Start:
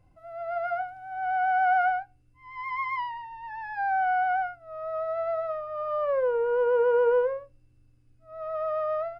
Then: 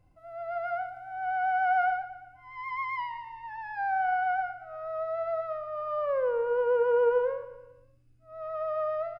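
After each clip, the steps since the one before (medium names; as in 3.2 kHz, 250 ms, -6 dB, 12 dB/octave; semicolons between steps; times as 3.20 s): feedback delay 116 ms, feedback 53%, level -14 dB; trim -2.5 dB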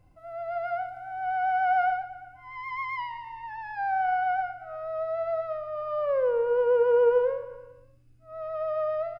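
dynamic bell 1.3 kHz, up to -5 dB, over -43 dBFS, Q 0.94; trim +4 dB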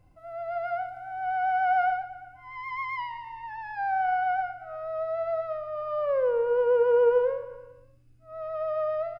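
no audible change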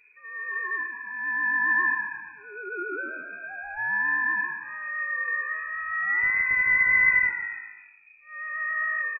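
rattle on loud lows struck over -38 dBFS, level -30 dBFS; frequency-shifting echo 136 ms, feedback 37%, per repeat +53 Hz, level -8.5 dB; frequency inversion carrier 2.5 kHz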